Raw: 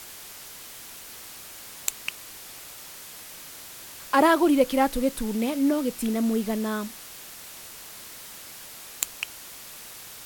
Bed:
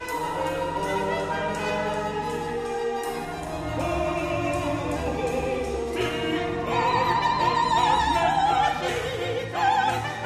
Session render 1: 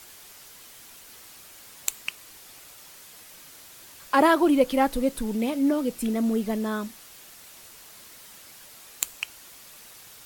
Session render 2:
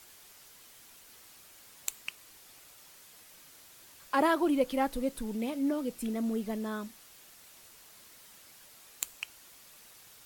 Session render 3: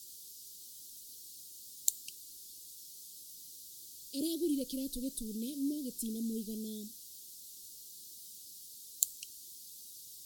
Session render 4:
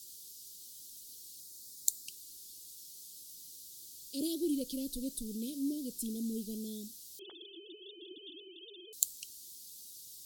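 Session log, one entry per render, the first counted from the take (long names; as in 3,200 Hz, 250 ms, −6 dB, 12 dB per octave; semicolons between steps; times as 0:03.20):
broadband denoise 6 dB, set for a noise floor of −43 dBFS
level −7.5 dB
inverse Chebyshev band-stop filter 860–1,900 Hz, stop band 60 dB; tilt shelving filter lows −5.5 dB
0:01.40–0:02.08: flat-topped bell 1,900 Hz −10.5 dB; 0:07.19–0:08.93: three sine waves on the formant tracks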